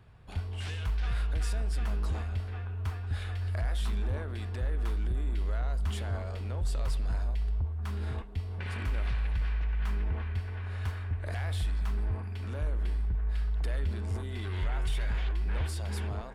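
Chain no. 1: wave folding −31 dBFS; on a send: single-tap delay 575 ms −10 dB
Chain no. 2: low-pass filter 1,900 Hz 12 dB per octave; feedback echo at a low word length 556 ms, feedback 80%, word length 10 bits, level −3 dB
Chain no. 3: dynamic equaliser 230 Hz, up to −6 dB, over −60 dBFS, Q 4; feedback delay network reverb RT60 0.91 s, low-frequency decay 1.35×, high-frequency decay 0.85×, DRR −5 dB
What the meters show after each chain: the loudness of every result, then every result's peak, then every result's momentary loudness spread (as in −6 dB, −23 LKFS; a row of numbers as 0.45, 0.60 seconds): −37.5, −30.0, −28.0 LKFS; −28.5, −16.5, −12.5 dBFS; 2, 5, 4 LU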